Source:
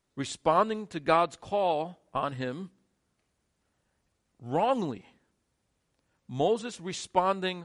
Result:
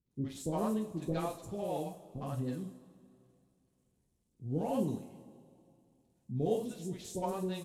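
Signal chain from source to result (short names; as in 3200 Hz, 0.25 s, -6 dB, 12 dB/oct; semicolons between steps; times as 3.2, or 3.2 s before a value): CVSD 64 kbps; EQ curve 340 Hz 0 dB, 1400 Hz -20 dB, 7700 Hz -5 dB; three bands offset in time lows, mids, highs 60/110 ms, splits 510/5100 Hz; two-slope reverb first 0.24 s, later 2.5 s, from -20 dB, DRR 2 dB; gain -1.5 dB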